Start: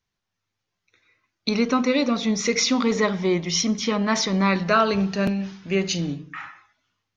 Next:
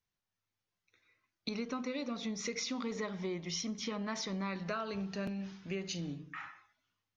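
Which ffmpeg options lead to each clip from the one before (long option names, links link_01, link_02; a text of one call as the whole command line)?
ffmpeg -i in.wav -af "acompressor=threshold=-27dB:ratio=4,volume=-9dB" out.wav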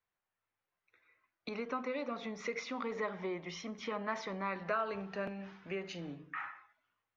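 ffmpeg -i in.wav -filter_complex "[0:a]acrossover=split=410 2500:gain=0.251 1 0.112[link_01][link_02][link_03];[link_01][link_02][link_03]amix=inputs=3:normalize=0,volume=5dB" out.wav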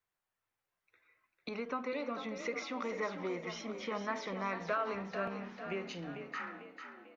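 ffmpeg -i in.wav -filter_complex "[0:a]asplit=7[link_01][link_02][link_03][link_04][link_05][link_06][link_07];[link_02]adelay=446,afreqshift=34,volume=-8.5dB[link_08];[link_03]adelay=892,afreqshift=68,volume=-14.5dB[link_09];[link_04]adelay=1338,afreqshift=102,volume=-20.5dB[link_10];[link_05]adelay=1784,afreqshift=136,volume=-26.6dB[link_11];[link_06]adelay=2230,afreqshift=170,volume=-32.6dB[link_12];[link_07]adelay=2676,afreqshift=204,volume=-38.6dB[link_13];[link_01][link_08][link_09][link_10][link_11][link_12][link_13]amix=inputs=7:normalize=0" out.wav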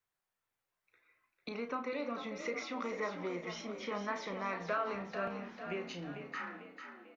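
ffmpeg -i in.wav -filter_complex "[0:a]asplit=2[link_01][link_02];[link_02]adelay=34,volume=-9dB[link_03];[link_01][link_03]amix=inputs=2:normalize=0,volume=-1dB" out.wav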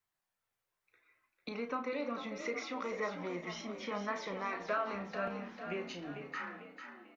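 ffmpeg -i in.wav -af "flanger=delay=1:depth=2.9:regen=-69:speed=0.28:shape=sinusoidal,volume=4.5dB" out.wav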